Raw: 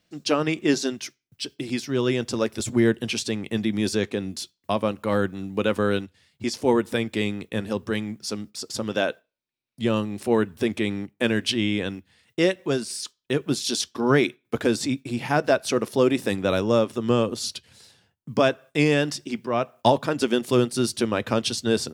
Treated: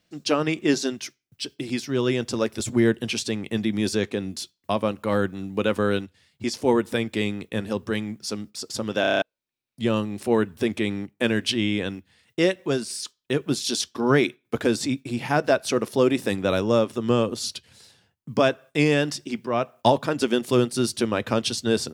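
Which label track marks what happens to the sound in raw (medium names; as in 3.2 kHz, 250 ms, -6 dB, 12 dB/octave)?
9.010000	9.010000	stutter in place 0.03 s, 7 plays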